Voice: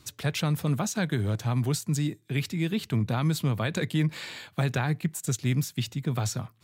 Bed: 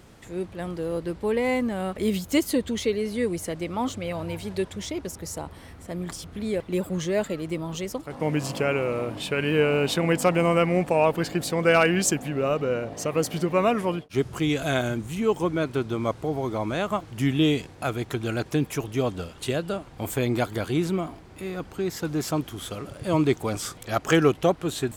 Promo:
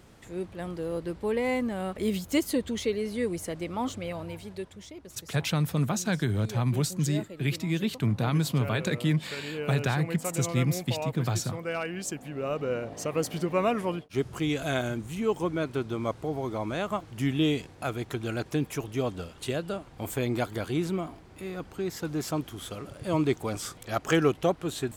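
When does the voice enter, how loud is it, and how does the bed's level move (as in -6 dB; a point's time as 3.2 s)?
5.10 s, 0.0 dB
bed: 4.03 s -3.5 dB
4.93 s -13.5 dB
11.9 s -13.5 dB
12.72 s -4 dB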